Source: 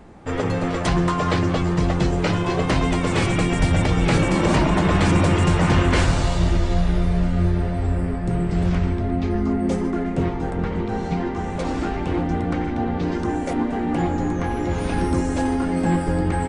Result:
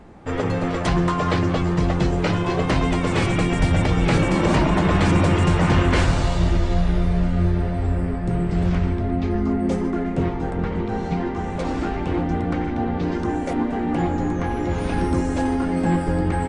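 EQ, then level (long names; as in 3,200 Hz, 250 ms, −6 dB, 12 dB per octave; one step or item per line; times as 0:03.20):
high-shelf EQ 6,400 Hz −5.5 dB
0.0 dB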